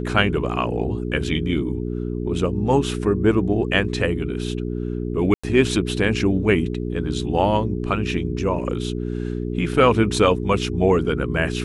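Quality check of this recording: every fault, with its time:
hum 60 Hz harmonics 7 -26 dBFS
5.34–5.43 s: dropout 95 ms

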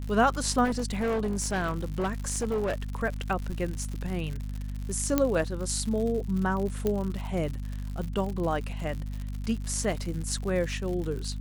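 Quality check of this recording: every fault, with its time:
crackle 110 per s -33 dBFS
hum 50 Hz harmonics 5 -34 dBFS
0.64–2.82 s: clipped -24 dBFS
5.18 s: pop -9 dBFS
6.87 s: pop -15 dBFS

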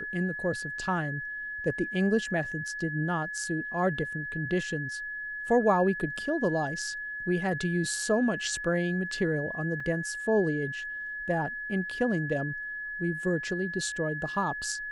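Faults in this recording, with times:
whine 1.7 kHz -34 dBFS
9.80 s: dropout 4 ms

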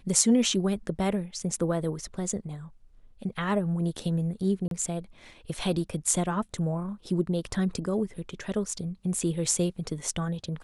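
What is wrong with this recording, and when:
4.68–4.71 s: dropout 32 ms

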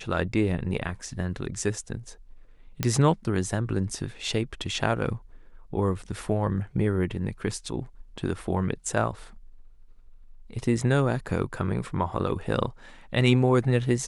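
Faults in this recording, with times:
2.83 s: pop -10 dBFS

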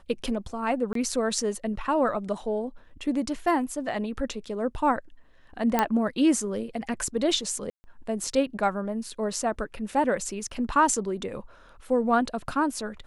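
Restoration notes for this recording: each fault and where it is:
0.93–0.95 s: dropout 23 ms
5.79 s: pop -8 dBFS
7.70–7.84 s: dropout 140 ms

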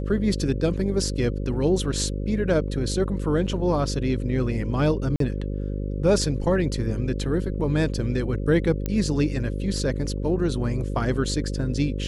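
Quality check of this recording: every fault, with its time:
buzz 50 Hz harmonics 11 -28 dBFS
5.16–5.20 s: dropout 43 ms
8.86 s: pop -13 dBFS

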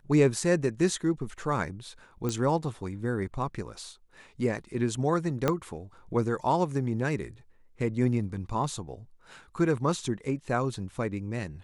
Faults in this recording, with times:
2.29 s: pop -17 dBFS
5.48 s: pop -11 dBFS

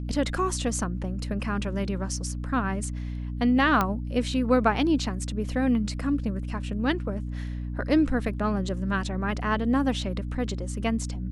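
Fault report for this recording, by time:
hum 60 Hz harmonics 5 -32 dBFS
3.81 s: pop -10 dBFS

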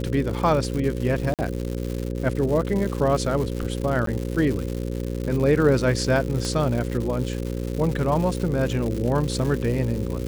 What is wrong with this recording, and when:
buzz 60 Hz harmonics 9 -28 dBFS
crackle 230 per s -28 dBFS
1.34–1.39 s: dropout 48 ms
4.06–4.07 s: dropout 13 ms
6.45 s: pop

